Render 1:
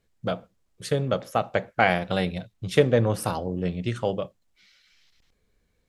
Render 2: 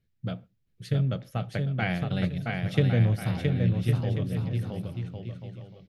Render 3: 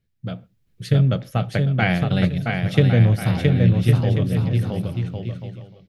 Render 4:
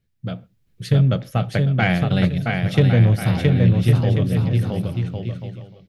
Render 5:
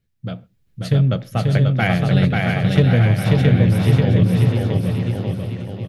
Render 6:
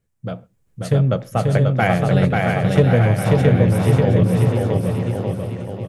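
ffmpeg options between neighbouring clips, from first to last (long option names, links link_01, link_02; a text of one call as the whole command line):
ffmpeg -i in.wav -af "equalizer=frequency=125:width_type=o:width=1:gain=10,equalizer=frequency=500:width_type=o:width=1:gain=-6,equalizer=frequency=1000:width_type=o:width=1:gain=-10,equalizer=frequency=8000:width_type=o:width=1:gain=-11,aecho=1:1:670|1106|1389|1573|1692:0.631|0.398|0.251|0.158|0.1,volume=-5dB" out.wav
ffmpeg -i in.wav -af "dynaudnorm=framelen=100:gausssize=9:maxgain=7.5dB,volume=1.5dB" out.wav
ffmpeg -i in.wav -af "asoftclip=type=tanh:threshold=-5dB,volume=1.5dB" out.wav
ffmpeg -i in.wav -af "aecho=1:1:538|1076|1614|2152|2690:0.708|0.255|0.0917|0.033|0.0119" out.wav
ffmpeg -i in.wav -af "equalizer=frequency=500:width_type=o:width=1:gain=6,equalizer=frequency=1000:width_type=o:width=1:gain=6,equalizer=frequency=4000:width_type=o:width=1:gain=-6,equalizer=frequency=8000:width_type=o:width=1:gain=8,volume=-1.5dB" out.wav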